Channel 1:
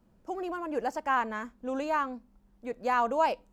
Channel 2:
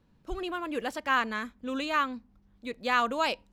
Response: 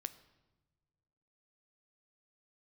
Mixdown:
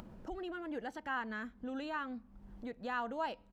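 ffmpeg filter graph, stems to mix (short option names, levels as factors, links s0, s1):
-filter_complex "[0:a]acompressor=mode=upward:threshold=0.0398:ratio=2.5,volume=0.335,asplit=2[s0][s1];[1:a]adelay=0.4,volume=0.531,asplit=2[s2][s3];[s3]volume=0.1[s4];[s1]apad=whole_len=155474[s5];[s2][s5]sidechaincompress=threshold=0.00562:ratio=8:attack=6.7:release=154[s6];[2:a]atrim=start_sample=2205[s7];[s4][s7]afir=irnorm=-1:irlink=0[s8];[s0][s6][s8]amix=inputs=3:normalize=0,highshelf=f=4500:g=-11.5,acompressor=mode=upward:threshold=0.00447:ratio=2.5"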